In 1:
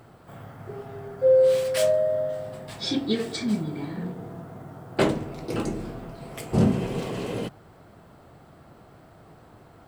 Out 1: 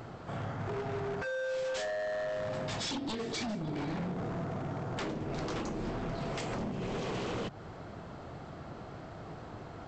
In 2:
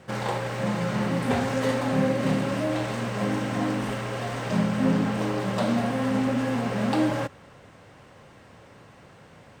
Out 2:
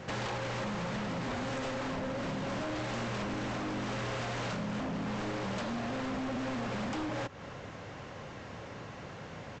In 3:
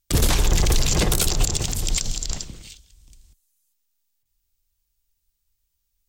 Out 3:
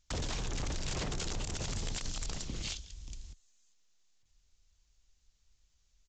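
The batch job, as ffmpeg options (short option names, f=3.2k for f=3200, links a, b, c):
-af "acompressor=threshold=-34dB:ratio=16,aresample=16000,aeval=exprs='0.0158*(abs(mod(val(0)/0.0158+3,4)-2)-1)':c=same,aresample=44100,volume=5.5dB"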